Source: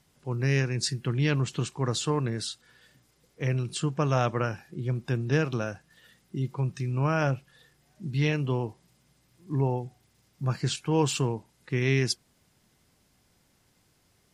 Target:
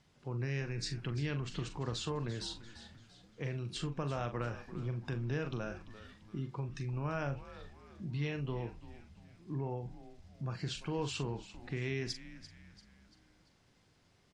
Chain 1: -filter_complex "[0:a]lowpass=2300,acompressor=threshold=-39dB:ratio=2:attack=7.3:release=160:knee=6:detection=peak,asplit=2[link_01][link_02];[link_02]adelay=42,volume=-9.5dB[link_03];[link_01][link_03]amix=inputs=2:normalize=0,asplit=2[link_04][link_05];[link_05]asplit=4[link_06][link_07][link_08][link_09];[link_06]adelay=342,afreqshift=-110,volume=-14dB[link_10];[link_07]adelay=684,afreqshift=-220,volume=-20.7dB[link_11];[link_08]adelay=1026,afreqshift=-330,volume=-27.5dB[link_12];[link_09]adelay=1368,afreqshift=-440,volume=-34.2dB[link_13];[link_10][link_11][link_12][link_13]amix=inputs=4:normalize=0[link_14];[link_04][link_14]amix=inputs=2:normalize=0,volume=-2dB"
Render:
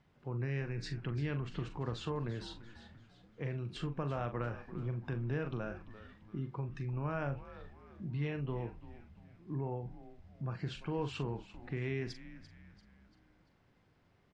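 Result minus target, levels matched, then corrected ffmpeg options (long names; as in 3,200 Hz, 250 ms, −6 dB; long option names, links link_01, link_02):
4,000 Hz band −6.0 dB
-filter_complex "[0:a]lowpass=5400,acompressor=threshold=-39dB:ratio=2:attack=7.3:release=160:knee=6:detection=peak,asplit=2[link_01][link_02];[link_02]adelay=42,volume=-9.5dB[link_03];[link_01][link_03]amix=inputs=2:normalize=0,asplit=2[link_04][link_05];[link_05]asplit=4[link_06][link_07][link_08][link_09];[link_06]adelay=342,afreqshift=-110,volume=-14dB[link_10];[link_07]adelay=684,afreqshift=-220,volume=-20.7dB[link_11];[link_08]adelay=1026,afreqshift=-330,volume=-27.5dB[link_12];[link_09]adelay=1368,afreqshift=-440,volume=-34.2dB[link_13];[link_10][link_11][link_12][link_13]amix=inputs=4:normalize=0[link_14];[link_04][link_14]amix=inputs=2:normalize=0,volume=-2dB"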